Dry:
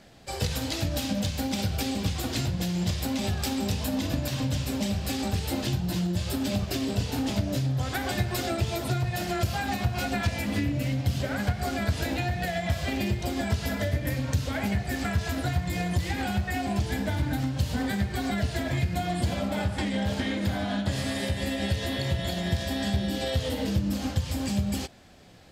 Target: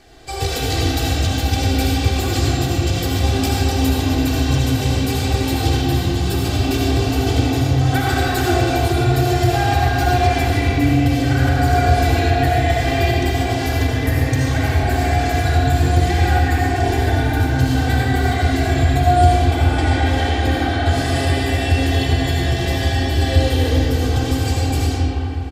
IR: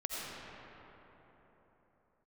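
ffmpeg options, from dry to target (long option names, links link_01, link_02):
-filter_complex "[0:a]lowshelf=frequency=92:gain=3,aecho=1:1:2.6:0.92,asplit=2[link_01][link_02];[link_02]volume=14.5dB,asoftclip=hard,volume=-14.5dB,volume=-10dB[link_03];[link_01][link_03]amix=inputs=2:normalize=0[link_04];[1:a]atrim=start_sample=2205,asetrate=48510,aresample=44100[link_05];[link_04][link_05]afir=irnorm=-1:irlink=0,volume=3.5dB"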